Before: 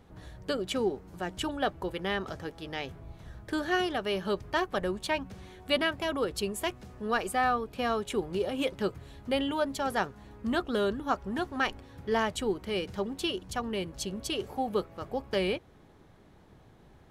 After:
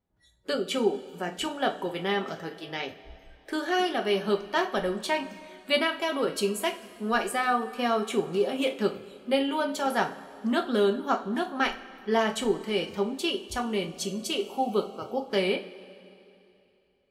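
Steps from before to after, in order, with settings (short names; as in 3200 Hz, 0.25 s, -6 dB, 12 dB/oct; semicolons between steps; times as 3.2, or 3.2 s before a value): spectral noise reduction 28 dB; two-slope reverb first 0.29 s, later 2.9 s, from -20 dB, DRR 3 dB; gain +1.5 dB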